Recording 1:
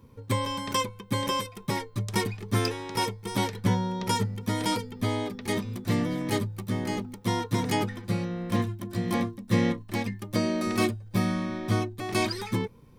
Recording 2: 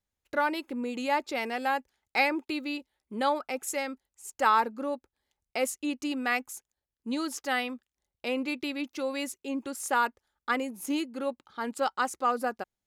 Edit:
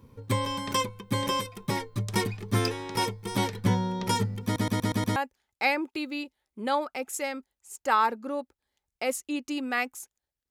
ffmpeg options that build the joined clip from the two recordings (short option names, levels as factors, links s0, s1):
-filter_complex "[0:a]apad=whole_dur=10.5,atrim=end=10.5,asplit=6[s0][s1][s2][s3][s4][s5];[s0]atrim=end=4.562[s6];[s1]atrim=start=4.438:end=4.562[s7];[s2]atrim=start=4.438:end=4.562[s8];[s3]atrim=start=4.438:end=4.562[s9];[s4]atrim=start=4.438:end=4.562[s10];[s5]atrim=start=4.438:end=4.562[s11];[1:a]atrim=start=1.698:end=7.04[s12];[s6][s7]acrossfade=d=0.004:c1=hsin:c2=hsin[s13];[s13][s8]acrossfade=d=0.004:c1=hsin:c2=hsin[s14];[s14][s9]acrossfade=d=0.004:c1=hsin:c2=hsin[s15];[s15][s10]acrossfade=d=0.004:c1=hsin:c2=hsin[s16];[s16][s11]acrossfade=d=0.004:c1=hsin:c2=hsin[s17];[s17][s12]acrossfade=d=0.004:c1=hsin:c2=hsin"